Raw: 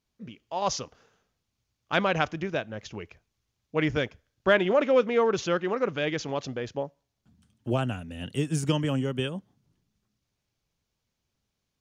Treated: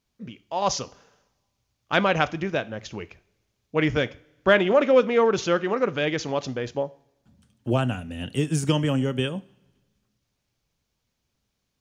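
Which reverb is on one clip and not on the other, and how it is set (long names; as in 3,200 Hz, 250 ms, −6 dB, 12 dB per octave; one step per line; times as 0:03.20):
coupled-rooms reverb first 0.43 s, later 1.5 s, from −19 dB, DRR 14.5 dB
level +3.5 dB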